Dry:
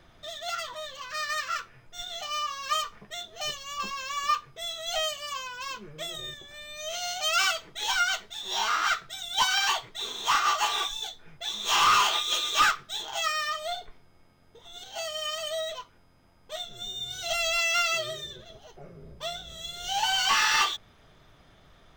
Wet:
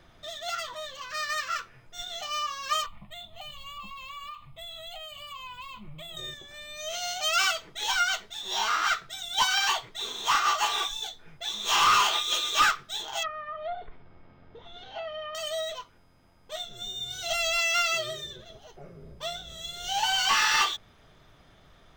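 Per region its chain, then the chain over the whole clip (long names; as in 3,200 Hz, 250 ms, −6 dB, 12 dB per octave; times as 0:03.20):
0:02.86–0:06.17: low-shelf EQ 180 Hz +8.5 dB + downward compressor 12 to 1, threshold −35 dBFS + phaser with its sweep stopped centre 1,600 Hz, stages 6
0:13.23–0:15.35: mu-law and A-law mismatch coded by mu + treble cut that deepens with the level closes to 1,000 Hz, closed at −25.5 dBFS + high-frequency loss of the air 310 metres
whole clip: no processing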